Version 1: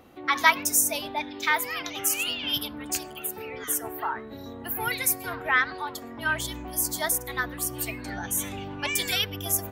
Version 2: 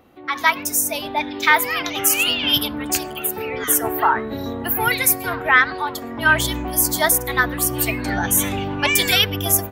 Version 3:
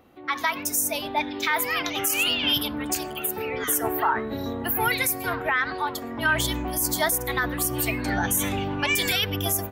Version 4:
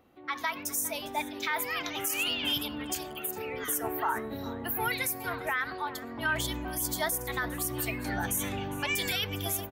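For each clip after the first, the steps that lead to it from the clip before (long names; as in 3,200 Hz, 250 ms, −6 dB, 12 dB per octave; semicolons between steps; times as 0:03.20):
parametric band 7,200 Hz −4 dB 1.5 octaves; automatic gain control gain up to 14 dB
brickwall limiter −10 dBFS, peak gain reduction 8.5 dB; level −3 dB
single-tap delay 406 ms −17.5 dB; level −7 dB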